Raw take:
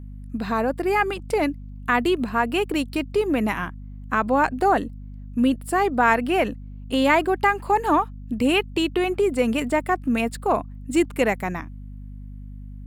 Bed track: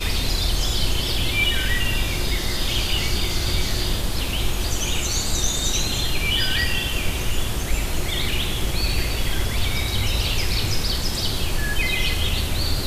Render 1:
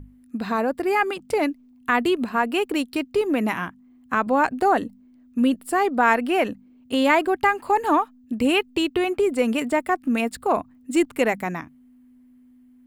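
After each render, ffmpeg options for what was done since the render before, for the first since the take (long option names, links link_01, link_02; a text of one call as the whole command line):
ffmpeg -i in.wav -af "bandreject=frequency=50:width_type=h:width=6,bandreject=frequency=100:width_type=h:width=6,bandreject=frequency=150:width_type=h:width=6,bandreject=frequency=200:width_type=h:width=6" out.wav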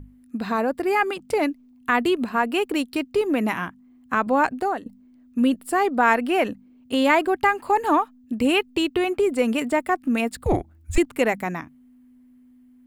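ffmpeg -i in.wav -filter_complex "[0:a]asettb=1/sr,asplit=3[link_01][link_02][link_03];[link_01]atrim=end=10.444[link_04];[link_02]atrim=start=10.44:end=10.98,asetpts=PTS-STARTPTS,afade=type=in:duration=0.004:curve=qsin,afade=type=out:start_time=0.536:duration=0.004:curve=qsin,afreqshift=-330[link_05];[link_03]atrim=start=10.976[link_06];[link_04][link_05]acrossfade=duration=0.004:curve1=hsin:curve2=qsin[link_07];[link_07][link_06]acrossfade=duration=0.004:curve1=qsin:curve2=hsin,asplit=2[link_08][link_09];[link_08]atrim=end=4.86,asetpts=PTS-STARTPTS,afade=type=out:start_time=4.46:duration=0.4:silence=0.149624[link_10];[link_09]atrim=start=4.86,asetpts=PTS-STARTPTS,afade=type=in:duration=0.004:curve=hsin:silence=0.149624[link_11];[link_10][link_11]concat=n=2:v=0:a=1" out.wav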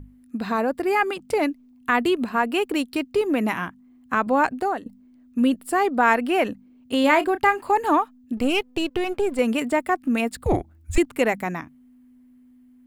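ffmpeg -i in.wav -filter_complex "[0:a]asettb=1/sr,asplit=3[link_01][link_02][link_03];[link_01]atrim=end=7.014[link_04];[link_02]atrim=start=7.01:end=7.66,asetpts=PTS-STARTPTS,afade=type=in:duration=0.004:curve=qsin,afade=type=out:start_time=0.646:duration=0.004:curve=qsin,asplit=2[link_05][link_06];[link_06]adelay=30,volume=-12dB[link_07];[link_05][link_07]amix=inputs=2:normalize=0,atrim=end_sample=28665[link_08];[link_03]atrim=start=7.656[link_09];[link_04][link_08]acrossfade=duration=0.004:curve1=hsin:curve2=qsin[link_10];[link_10][link_09]acrossfade=duration=0.004:curve1=qsin:curve2=hsin,asettb=1/sr,asplit=3[link_11][link_12][link_13];[link_11]atrim=end=8.374[link_14];[link_12]atrim=start=8.37:end=9.39,asetpts=PTS-STARTPTS,afade=type=in:duration=0.004:curve=qsin,afade=type=out:start_time=1.016:duration=0.004:curve=qsin,aeval=exprs='if(lt(val(0),0),0.447*val(0),val(0))':channel_layout=same[link_15];[link_13]atrim=start=9.386[link_16];[link_14][link_15]acrossfade=duration=0.004:curve1=hsin:curve2=qsin[link_17];[link_17][link_16]acrossfade=duration=0.004:curve1=qsin:curve2=hsin" out.wav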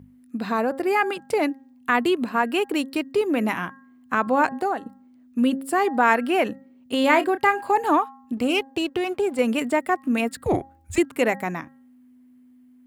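ffmpeg -i in.wav -af "highpass=110,bandreject=frequency=269.9:width_type=h:width=4,bandreject=frequency=539.8:width_type=h:width=4,bandreject=frequency=809.7:width_type=h:width=4,bandreject=frequency=1079.6:width_type=h:width=4,bandreject=frequency=1349.5:width_type=h:width=4,bandreject=frequency=1619.4:width_type=h:width=4,bandreject=frequency=1889.3:width_type=h:width=4" out.wav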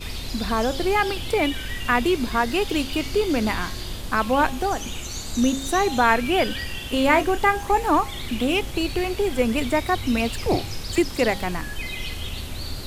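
ffmpeg -i in.wav -i bed.wav -filter_complex "[1:a]volume=-9dB[link_01];[0:a][link_01]amix=inputs=2:normalize=0" out.wav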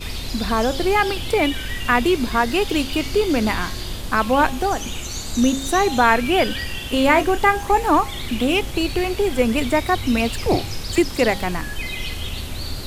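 ffmpeg -i in.wav -af "volume=3dB,alimiter=limit=-2dB:level=0:latency=1" out.wav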